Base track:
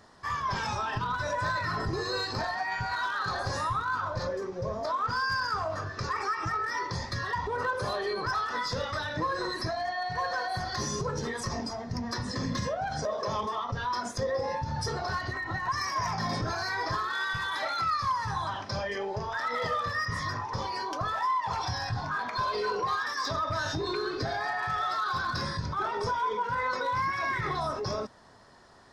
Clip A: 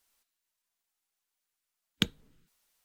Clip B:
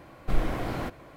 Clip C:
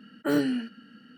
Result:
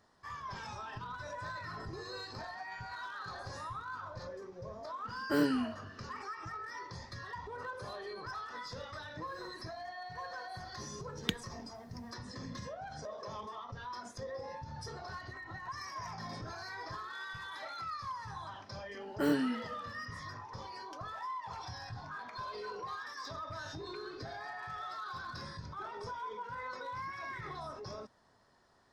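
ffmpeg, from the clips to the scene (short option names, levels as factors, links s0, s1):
-filter_complex "[3:a]asplit=2[s0][s1];[0:a]volume=0.237[s2];[1:a]alimiter=limit=0.355:level=0:latency=1:release=71[s3];[s0]atrim=end=1.17,asetpts=PTS-STARTPTS,volume=0.562,afade=t=in:d=0.004:c=hsin,afade=t=out:st=1.166:d=0.004:c=hsin,adelay=222705S[s4];[s3]atrim=end=2.84,asetpts=PTS-STARTPTS,volume=0.75,afade=t=in:d=0.004:c=hsin,afade=t=out:st=2.836:d=0.004:c=hsin,adelay=9270[s5];[s1]atrim=end=1.17,asetpts=PTS-STARTPTS,volume=0.531,afade=t=in:d=0.004:c=hsin,afade=t=out:st=1.166:d=0.004:c=hsin,adelay=18940[s6];[s2][s4][s5][s6]amix=inputs=4:normalize=0"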